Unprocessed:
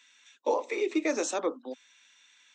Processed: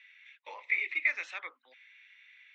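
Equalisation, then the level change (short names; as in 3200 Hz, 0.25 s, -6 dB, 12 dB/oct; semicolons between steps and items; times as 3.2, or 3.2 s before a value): resonant high-pass 2100 Hz, resonance Q 6; air absorption 360 m; 0.0 dB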